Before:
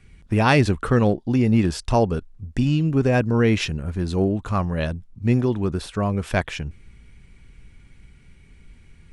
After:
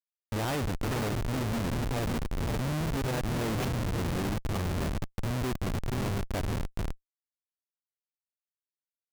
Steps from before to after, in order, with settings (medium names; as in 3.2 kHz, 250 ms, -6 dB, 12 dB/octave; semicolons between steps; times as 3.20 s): echo that smears into a reverb 500 ms, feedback 47%, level -6 dB; Schmitt trigger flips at -21 dBFS; trim -8.5 dB